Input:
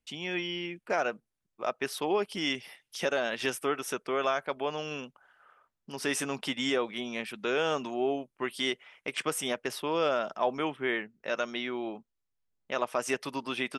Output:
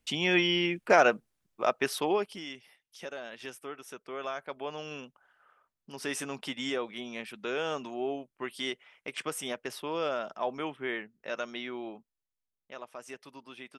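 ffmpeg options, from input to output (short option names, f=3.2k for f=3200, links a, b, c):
-af "volume=15.5dB,afade=t=out:st=1.07:d=1.03:silence=0.446684,afade=t=out:st=2.1:d=0.35:silence=0.237137,afade=t=in:st=3.91:d=0.97:silence=0.421697,afade=t=out:st=11.79:d=1.04:silence=0.316228"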